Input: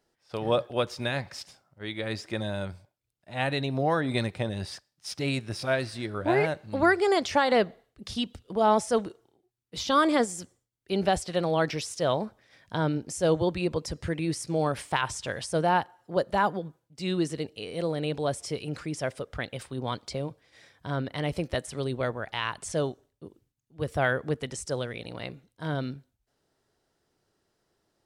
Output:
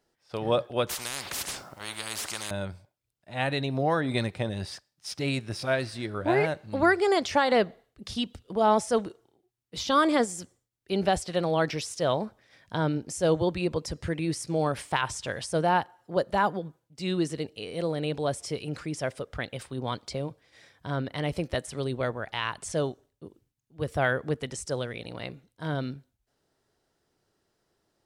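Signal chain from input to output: 0.89–2.51 s: spectrum-flattening compressor 10:1

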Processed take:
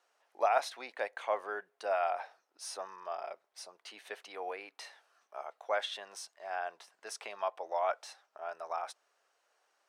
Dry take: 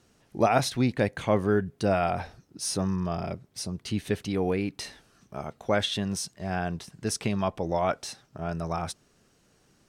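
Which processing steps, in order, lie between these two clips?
high-pass 640 Hz 24 dB/octave; treble shelf 2.6 kHz -12 dB; trim -2 dB

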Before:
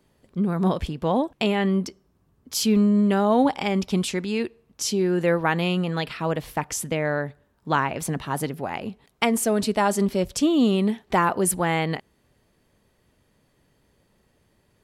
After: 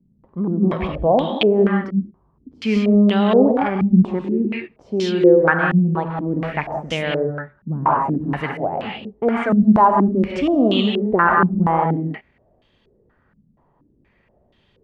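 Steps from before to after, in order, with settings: gated-style reverb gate 220 ms rising, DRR 2 dB; step-sequenced low-pass 4.2 Hz 200–3300 Hz

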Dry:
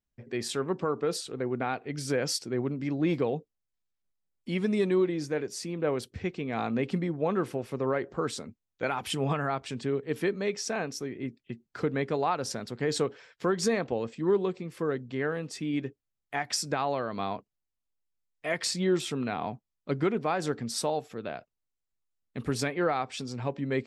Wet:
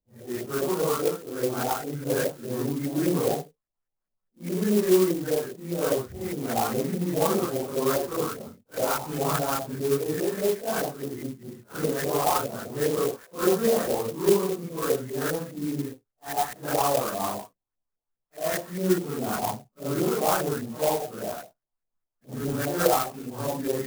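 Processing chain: phase randomisation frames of 200 ms; LFO low-pass saw up 4.9 Hz 540–2000 Hz; sampling jitter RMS 0.081 ms; trim +1.5 dB

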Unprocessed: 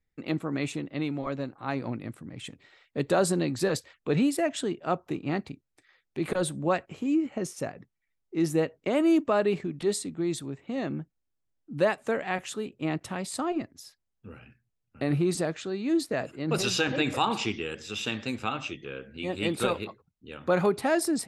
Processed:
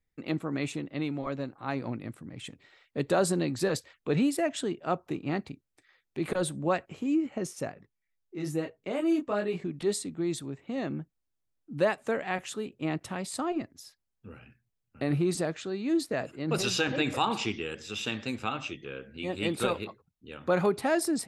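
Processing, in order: 7.74–9.64 s: detune thickener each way 16 cents; trim -1.5 dB

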